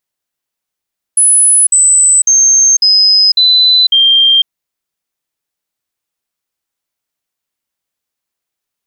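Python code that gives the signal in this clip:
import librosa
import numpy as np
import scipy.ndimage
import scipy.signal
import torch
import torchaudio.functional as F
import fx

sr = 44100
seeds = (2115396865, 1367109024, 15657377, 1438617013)

y = fx.stepped_sweep(sr, from_hz=10100.0, direction='down', per_octave=3, tones=6, dwell_s=0.5, gap_s=0.05, level_db=-4.5)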